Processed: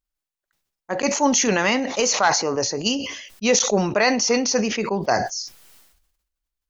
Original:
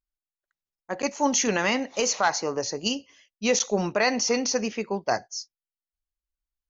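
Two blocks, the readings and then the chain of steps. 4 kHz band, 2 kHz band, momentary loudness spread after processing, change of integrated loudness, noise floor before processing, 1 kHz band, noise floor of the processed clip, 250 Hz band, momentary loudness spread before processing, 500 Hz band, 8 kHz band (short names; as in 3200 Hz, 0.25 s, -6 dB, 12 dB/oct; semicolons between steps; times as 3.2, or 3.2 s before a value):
+5.5 dB, +5.0 dB, 9 LU, +5.0 dB, under -85 dBFS, +5.0 dB, under -85 dBFS, +5.5 dB, 8 LU, +5.0 dB, n/a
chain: sustainer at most 58 dB/s; gain +4 dB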